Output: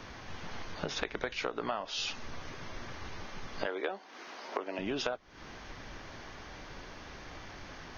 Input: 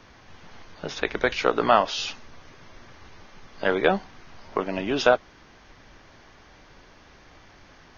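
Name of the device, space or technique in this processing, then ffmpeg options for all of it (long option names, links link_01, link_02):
serial compression, leveller first: -filter_complex "[0:a]acompressor=threshold=-31dB:ratio=1.5,acompressor=threshold=-37dB:ratio=5,asettb=1/sr,asplit=3[link_01][link_02][link_03];[link_01]atrim=end=3.664[link_04];[link_02]atrim=start=3.66:end=4.79,asetpts=PTS-STARTPTS,afade=type=in:duration=0.004:curve=qsin,afade=type=out:start_time=1.126:duration=0.004:curve=qsin,highpass=frequency=290:width=0.5412,highpass=frequency=290:width=1.3066[link_05];[link_03]atrim=start=4.786[link_06];[link_04][link_05]acrossfade=duration=0.004:curve1=hsin:curve2=qsin[link_07];[link_07][link_06]acrossfade=duration=0.004:curve1=qsin:curve2=hsin,volume=4.5dB"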